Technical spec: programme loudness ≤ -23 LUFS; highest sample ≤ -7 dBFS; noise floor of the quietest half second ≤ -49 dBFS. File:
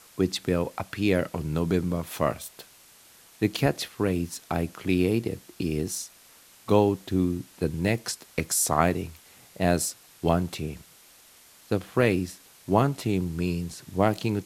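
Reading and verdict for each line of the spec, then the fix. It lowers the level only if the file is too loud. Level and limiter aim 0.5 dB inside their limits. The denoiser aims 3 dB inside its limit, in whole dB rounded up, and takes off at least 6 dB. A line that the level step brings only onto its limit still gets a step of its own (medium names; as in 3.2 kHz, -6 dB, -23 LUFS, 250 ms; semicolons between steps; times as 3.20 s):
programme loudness -27.0 LUFS: pass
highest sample -5.5 dBFS: fail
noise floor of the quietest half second -54 dBFS: pass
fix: peak limiter -7.5 dBFS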